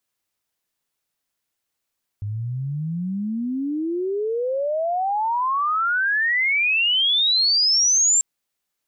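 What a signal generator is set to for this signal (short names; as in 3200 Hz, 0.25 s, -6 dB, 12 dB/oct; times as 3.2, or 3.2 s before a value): chirp logarithmic 100 Hz -> 7500 Hz -24.5 dBFS -> -14 dBFS 5.99 s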